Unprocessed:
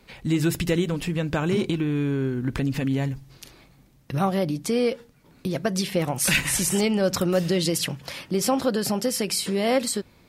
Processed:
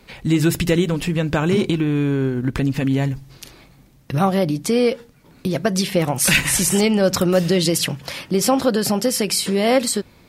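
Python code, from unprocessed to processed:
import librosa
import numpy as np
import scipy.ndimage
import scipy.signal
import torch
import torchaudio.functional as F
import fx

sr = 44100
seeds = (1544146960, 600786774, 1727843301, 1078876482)

y = fx.transient(x, sr, attack_db=-1, sustain_db=-5, at=(1.81, 2.93))
y = y * librosa.db_to_amplitude(5.5)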